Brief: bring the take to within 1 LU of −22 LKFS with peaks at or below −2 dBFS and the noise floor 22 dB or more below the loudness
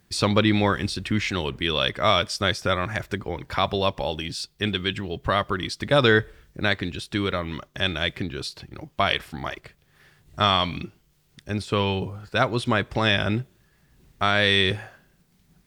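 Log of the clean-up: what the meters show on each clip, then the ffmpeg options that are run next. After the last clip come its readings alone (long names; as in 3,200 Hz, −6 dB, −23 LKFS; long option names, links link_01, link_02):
integrated loudness −24.0 LKFS; sample peak −4.5 dBFS; target loudness −22.0 LKFS
→ -af "volume=2dB"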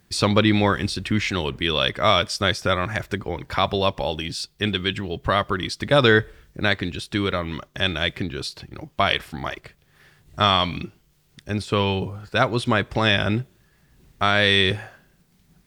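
integrated loudness −22.0 LKFS; sample peak −2.5 dBFS; background noise floor −61 dBFS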